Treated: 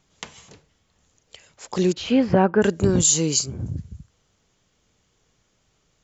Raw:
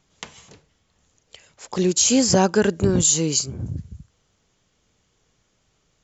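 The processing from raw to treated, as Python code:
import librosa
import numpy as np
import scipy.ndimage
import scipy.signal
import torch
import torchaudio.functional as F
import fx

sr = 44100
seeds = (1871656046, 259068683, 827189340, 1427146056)

y = fx.lowpass(x, sr, hz=fx.line((1.92, 3500.0), (2.61, 2000.0)), slope=24, at=(1.92, 2.61), fade=0.02)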